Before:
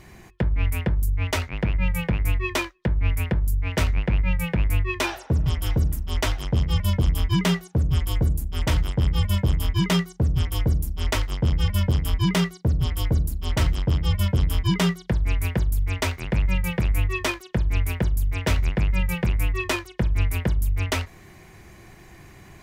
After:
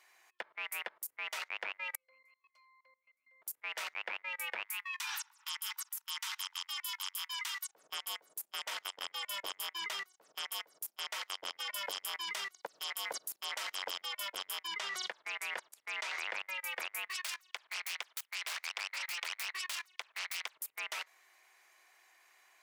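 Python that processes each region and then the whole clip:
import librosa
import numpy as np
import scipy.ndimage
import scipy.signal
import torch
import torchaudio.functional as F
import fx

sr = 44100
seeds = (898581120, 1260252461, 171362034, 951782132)

y = fx.chain(x, sr, fx.tilt_eq(slope=4.5),
    fx.octave_resonator(note='C', decay_s=0.74), at=(1.95, 3.42))
y = fx.chain(y, sr, fx.cheby1_highpass(hz=880.0, order=6),
    fx.high_shelf(hz=4800.0, db=9.0), at=(4.65, 7.68))
y = fx.chain(y, sr, fx.peak_eq(hz=8500.0, db=4.0, octaves=2.4),
    fx.band_squash(depth_pct=70), at=(11.6, 14.02))
y = fx.chain(y, sr, fx.lowpass(hz=7700.0, slope=12),
    fx.env_flatten(amount_pct=100), at=(14.76, 16.39))
y = fx.chain(y, sr, fx.self_delay(depth_ms=0.53),
    fx.highpass(hz=1100.0, slope=6),
    fx.peak_eq(hz=1900.0, db=3.0, octaves=2.5), at=(17.07, 20.57))
y = scipy.signal.sosfilt(scipy.signal.bessel(4, 1000.0, 'highpass', norm='mag', fs=sr, output='sos'), y)
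y = fx.level_steps(y, sr, step_db=21)
y = fx.upward_expand(y, sr, threshold_db=-54.0, expansion=1.5)
y = y * librosa.db_to_amplitude(3.5)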